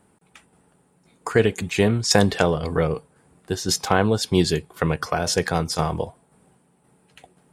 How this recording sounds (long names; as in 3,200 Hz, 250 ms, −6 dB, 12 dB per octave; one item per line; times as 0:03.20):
tremolo saw down 1.9 Hz, depth 45%